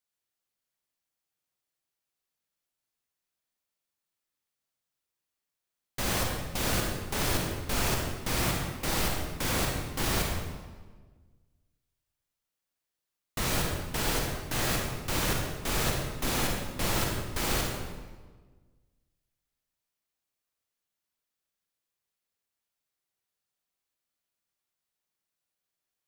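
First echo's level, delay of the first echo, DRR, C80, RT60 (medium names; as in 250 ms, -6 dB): no echo, no echo, 0.0 dB, 3.0 dB, 1.4 s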